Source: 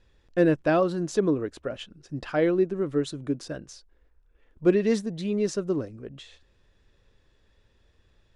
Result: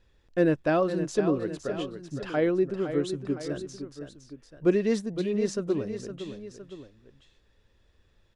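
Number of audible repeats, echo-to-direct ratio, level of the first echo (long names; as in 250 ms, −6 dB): 2, −8.5 dB, −9.5 dB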